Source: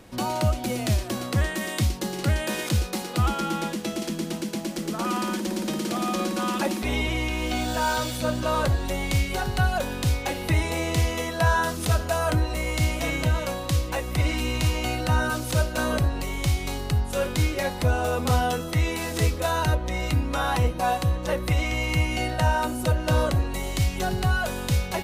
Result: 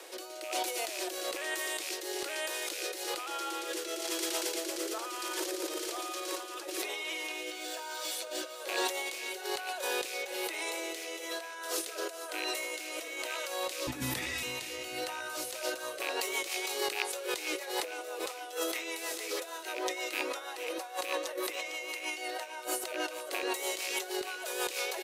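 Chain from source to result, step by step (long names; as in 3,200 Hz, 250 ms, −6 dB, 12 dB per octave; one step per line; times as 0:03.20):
loose part that buzzes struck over −21 dBFS, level −22 dBFS
Butterworth high-pass 340 Hz 72 dB per octave
high-shelf EQ 2,800 Hz +7 dB
in parallel at 0 dB: brickwall limiter −17.5 dBFS, peak gain reduction 9 dB
on the sum: compressor whose output falls as the input rises −29 dBFS, ratio −1
rotating-speaker cabinet horn 1.1 Hz, later 6.3 Hz, at 0:15.16
0:13.87–0:14.43: frequency shifter −240 Hz
on a send: repeating echo 453 ms, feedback 51%, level −14 dB
on the sum: level −6 dB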